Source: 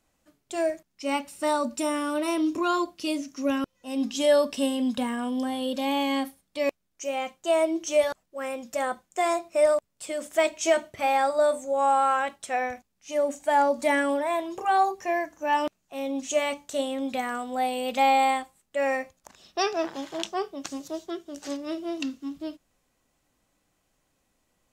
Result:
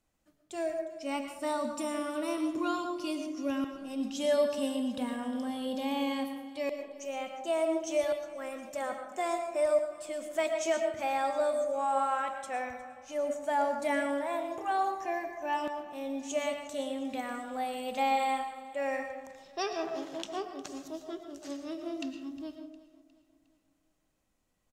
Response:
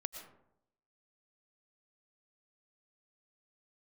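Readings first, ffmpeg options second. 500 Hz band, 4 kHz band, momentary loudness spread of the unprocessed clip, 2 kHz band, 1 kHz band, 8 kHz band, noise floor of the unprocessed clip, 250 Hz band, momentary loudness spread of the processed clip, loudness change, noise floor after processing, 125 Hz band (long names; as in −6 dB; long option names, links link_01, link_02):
−6.0 dB, −7.5 dB, 12 LU, −7.5 dB, −7.0 dB, −7.5 dB, −75 dBFS, −5.5 dB, 11 LU, −6.5 dB, −74 dBFS, can't be measured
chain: -filter_complex "[0:a]lowshelf=frequency=240:gain=4,aecho=1:1:358|716|1074|1432:0.112|0.0527|0.0248|0.0116[link_01];[1:a]atrim=start_sample=2205[link_02];[link_01][link_02]afir=irnorm=-1:irlink=0,volume=-6dB"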